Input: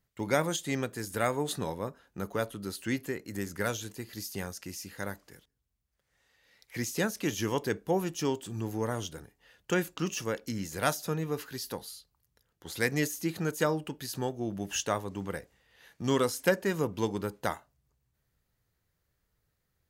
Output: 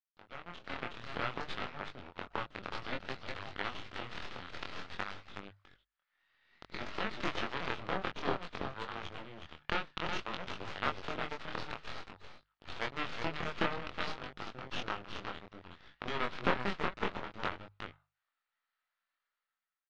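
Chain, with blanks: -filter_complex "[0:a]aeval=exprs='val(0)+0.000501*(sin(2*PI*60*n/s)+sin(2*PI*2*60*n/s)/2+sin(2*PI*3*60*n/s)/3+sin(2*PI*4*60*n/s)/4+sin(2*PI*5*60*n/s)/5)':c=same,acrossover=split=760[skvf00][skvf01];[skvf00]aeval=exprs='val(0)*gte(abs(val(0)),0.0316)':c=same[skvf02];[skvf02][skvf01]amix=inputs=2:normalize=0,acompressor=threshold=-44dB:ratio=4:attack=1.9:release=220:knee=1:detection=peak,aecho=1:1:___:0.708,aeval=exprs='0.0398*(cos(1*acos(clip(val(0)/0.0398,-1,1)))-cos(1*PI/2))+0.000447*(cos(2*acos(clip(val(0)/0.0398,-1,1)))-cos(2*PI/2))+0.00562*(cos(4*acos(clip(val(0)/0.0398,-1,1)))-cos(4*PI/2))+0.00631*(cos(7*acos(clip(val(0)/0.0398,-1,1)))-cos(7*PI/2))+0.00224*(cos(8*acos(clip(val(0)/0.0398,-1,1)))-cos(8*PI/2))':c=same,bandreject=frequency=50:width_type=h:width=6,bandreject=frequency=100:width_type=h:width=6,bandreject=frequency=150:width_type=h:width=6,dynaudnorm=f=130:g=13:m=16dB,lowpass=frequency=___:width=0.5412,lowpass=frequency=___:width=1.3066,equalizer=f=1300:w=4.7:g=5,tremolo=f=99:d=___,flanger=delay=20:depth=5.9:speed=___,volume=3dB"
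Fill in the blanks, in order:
368, 3800, 3800, 0.182, 0.56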